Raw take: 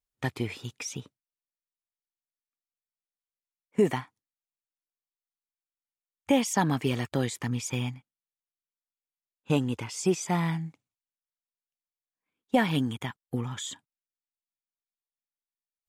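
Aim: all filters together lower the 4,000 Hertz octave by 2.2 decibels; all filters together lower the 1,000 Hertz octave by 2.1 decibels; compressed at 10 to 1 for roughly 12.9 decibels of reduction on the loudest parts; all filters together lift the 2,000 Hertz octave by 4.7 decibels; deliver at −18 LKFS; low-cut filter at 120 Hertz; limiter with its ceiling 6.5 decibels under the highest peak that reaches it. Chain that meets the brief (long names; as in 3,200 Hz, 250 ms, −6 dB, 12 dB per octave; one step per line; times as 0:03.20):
high-pass filter 120 Hz
parametric band 1,000 Hz −4 dB
parametric band 2,000 Hz +8 dB
parametric band 4,000 Hz −6.5 dB
downward compressor 10 to 1, threshold −31 dBFS
level +21 dB
brickwall limiter −5 dBFS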